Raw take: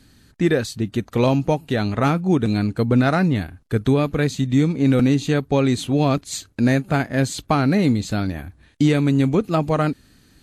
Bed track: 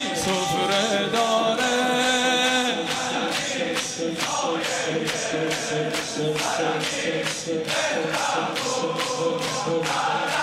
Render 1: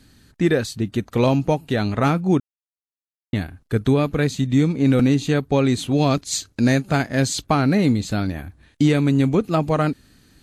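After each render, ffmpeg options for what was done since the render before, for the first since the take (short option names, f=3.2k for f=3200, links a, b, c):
-filter_complex "[0:a]asettb=1/sr,asplit=3[a][b][c];[a]atrim=end=5.914[d];[b]atrim=start=5.91:end=7.44,asetpts=PTS-STARTPTS,afade=t=in:d=0.004:c=qsin,afade=t=out:st=1.526:d=0.004:c=qsin,equalizer=f=5.5k:t=o:w=1.2:g=6.5[e];[c]atrim=start=7.436[f];[d][e]acrossfade=d=0.004:c1=hsin:c2=qsin[g];[g][f]acrossfade=d=0.004:c1=qsin:c2=hsin,asplit=3[h][i][j];[h]atrim=end=2.4,asetpts=PTS-STARTPTS,afade=t=out:st=2.396:d=0.004:c=hsin[k];[i]atrim=start=2.4:end=3.33,asetpts=PTS-STARTPTS,volume=0[l];[j]atrim=start=3.33,asetpts=PTS-STARTPTS,afade=t=in:d=0.004:c=hsin[m];[k][l][m]concat=n=3:v=0:a=1"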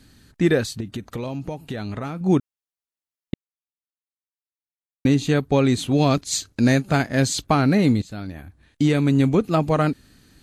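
-filter_complex "[0:a]asettb=1/sr,asplit=3[a][b][c];[a]atrim=end=0.804[d];[b]atrim=start=0.8:end=2.21,asetpts=PTS-STARTPTS,afade=t=in:d=0.004:c=qsin,afade=t=out:st=1.406:d=0.004:c=qsin,acompressor=threshold=-25dB:ratio=8:attack=3.2:release=140:knee=1:detection=peak[e];[c]atrim=start=2.206[f];[d][e]acrossfade=d=0.004:c1=hsin:c2=qsin[g];[g][f]acrossfade=d=0.004:c1=qsin:c2=hsin,asplit=4[h][i][j][k];[h]atrim=end=3.34,asetpts=PTS-STARTPTS,afade=t=out:st=3.336:d=0.004:c=hsin[l];[i]atrim=start=3.34:end=5.05,asetpts=PTS-STARTPTS,volume=0[m];[j]atrim=start=5.05:end=8.02,asetpts=PTS-STARTPTS,afade=t=in:d=0.004:c=hsin,afade=t=out:st=2.966:d=0.004:c=hsin:silence=0.199526[n];[k]atrim=start=8.02,asetpts=PTS-STARTPTS,afade=t=in:d=1.16:silence=0.199526[o];[l][m][n][o]concat=n=4:v=0:a=1"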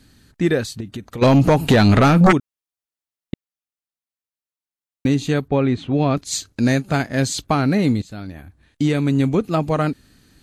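-filter_complex "[0:a]asplit=3[a][b][c];[a]afade=t=out:st=1.21:d=0.02[d];[b]aeval=exprs='0.422*sin(PI/2*6.31*val(0)/0.422)':c=same,afade=t=in:st=1.21:d=0.02,afade=t=out:st=2.31:d=0.02[e];[c]afade=t=in:st=2.31:d=0.02[f];[d][e][f]amix=inputs=3:normalize=0,asettb=1/sr,asplit=3[g][h][i];[g]atrim=end=5.484[j];[h]atrim=start=5.48:end=6.17,asetpts=PTS-STARTPTS,afade=t=in:d=0.004:c=qsin,afade=t=out:st=0.686:d=0.004:c=qsin,lowpass=2.5k[k];[i]atrim=start=6.166[l];[j][k]acrossfade=d=0.004:c1=hsin:c2=qsin[m];[m][l]acrossfade=d=0.004:c1=qsin:c2=hsin"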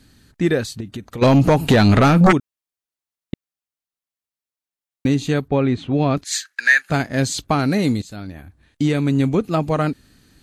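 -filter_complex "[0:a]asettb=1/sr,asplit=3[a][b][c];[a]atrim=end=6.244[d];[b]atrim=start=6.24:end=6.9,asetpts=PTS-STARTPTS,afade=t=in:d=0.004:c=qsin,afade=t=out:st=0.656:d=0.004:c=qsin,highpass=f=1.7k:t=q:w=7.9[e];[c]atrim=start=6.896[f];[d][e]acrossfade=d=0.004:c1=hsin:c2=qsin[g];[g][f]acrossfade=d=0.004:c1=qsin:c2=hsin,asettb=1/sr,asplit=3[h][i][j];[h]atrim=end=7.594[k];[i]atrim=start=7.59:end=8.16,asetpts=PTS-STARTPTS,afade=t=in:d=0.004:c=qsin,afade=t=out:st=0.566:d=0.004:c=qsin,bass=f=250:g=-2,treble=f=4k:g=6[l];[j]atrim=start=8.156[m];[k][l]acrossfade=d=0.004:c1=hsin:c2=qsin[n];[n][m]acrossfade=d=0.004:c1=qsin:c2=hsin"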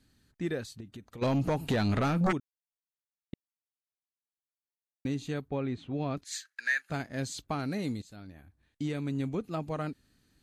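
-af "volume=-15dB"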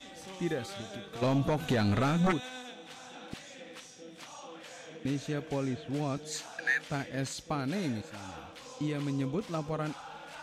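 -filter_complex "[1:a]volume=-22.5dB[a];[0:a][a]amix=inputs=2:normalize=0"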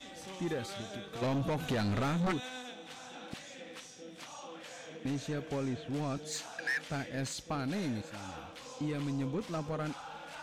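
-af "asoftclip=type=tanh:threshold=-28dB"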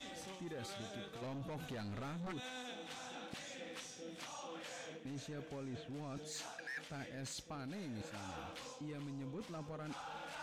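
-af "alimiter=level_in=7.5dB:limit=-24dB:level=0:latency=1:release=86,volume=-7.5dB,areverse,acompressor=threshold=-44dB:ratio=6,areverse"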